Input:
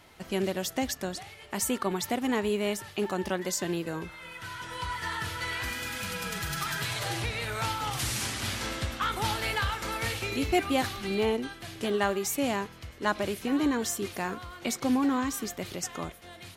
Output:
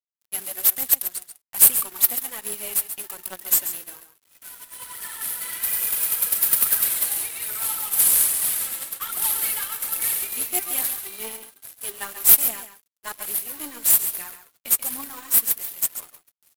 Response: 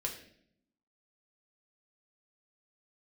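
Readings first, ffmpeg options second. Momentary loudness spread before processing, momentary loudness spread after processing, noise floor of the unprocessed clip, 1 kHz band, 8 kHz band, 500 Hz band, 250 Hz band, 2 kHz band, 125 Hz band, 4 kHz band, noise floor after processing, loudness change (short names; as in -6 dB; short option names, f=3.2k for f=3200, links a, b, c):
8 LU, 19 LU, -49 dBFS, -6.5 dB, +14.5 dB, -12.0 dB, -16.0 dB, -3.5 dB, under -15 dB, +0.5 dB, -71 dBFS, +11.0 dB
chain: -filter_complex "[0:a]highpass=f=1.2k:p=1,agate=range=-33dB:threshold=-40dB:ratio=3:detection=peak,highshelf=f=8.3k:g=8,aeval=exprs='0.251*(cos(1*acos(clip(val(0)/0.251,-1,1)))-cos(1*PI/2))+0.00447*(cos(3*acos(clip(val(0)/0.251,-1,1)))-cos(3*PI/2))+0.0251*(cos(5*acos(clip(val(0)/0.251,-1,1)))-cos(5*PI/2))+0.0141*(cos(7*acos(clip(val(0)/0.251,-1,1)))-cos(7*PI/2))+0.00282*(cos(8*acos(clip(val(0)/0.251,-1,1)))-cos(8*PI/2))':c=same,aphaser=in_gain=1:out_gain=1:delay=4.5:decay=0.54:speed=1.2:type=triangular,aexciter=amount=7.9:drive=8.3:freq=8.6k,acrusher=bits=2:mode=log:mix=0:aa=0.000001,aeval=exprs='sgn(val(0))*max(abs(val(0))-0.0178,0)':c=same,asplit=2[a][b];[b]aecho=0:1:136:0.299[c];[a][c]amix=inputs=2:normalize=0,volume=-5dB"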